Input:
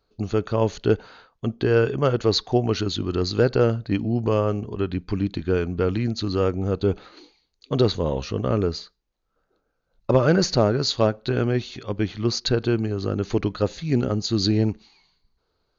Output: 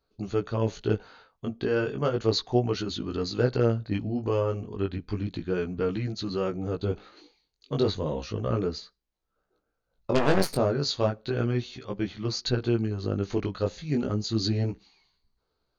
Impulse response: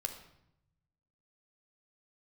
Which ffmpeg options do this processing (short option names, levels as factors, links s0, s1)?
-filter_complex "[0:a]asplit=3[s0][s1][s2];[s0]afade=t=out:st=10.14:d=0.02[s3];[s1]aeval=exprs='0.501*(cos(1*acos(clip(val(0)/0.501,-1,1)))-cos(1*PI/2))+0.1*(cos(4*acos(clip(val(0)/0.501,-1,1)))-cos(4*PI/2))+0.0891*(cos(6*acos(clip(val(0)/0.501,-1,1)))-cos(6*PI/2))+0.1*(cos(7*acos(clip(val(0)/0.501,-1,1)))-cos(7*PI/2))+0.0891*(cos(8*acos(clip(val(0)/0.501,-1,1)))-cos(8*PI/2))':c=same,afade=t=in:st=10.14:d=0.02,afade=t=out:st=10.55:d=0.02[s4];[s2]afade=t=in:st=10.55:d=0.02[s5];[s3][s4][s5]amix=inputs=3:normalize=0,flanger=delay=15:depth=6.2:speed=0.33,volume=0.75"